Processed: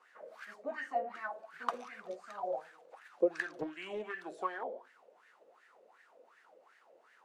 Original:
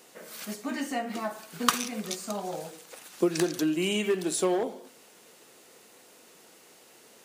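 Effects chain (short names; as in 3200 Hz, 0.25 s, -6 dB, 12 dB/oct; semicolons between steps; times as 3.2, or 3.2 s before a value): wah 2.7 Hz 520–1800 Hz, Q 7.4; 3.54–4.13 Doppler distortion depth 0.32 ms; gain +6 dB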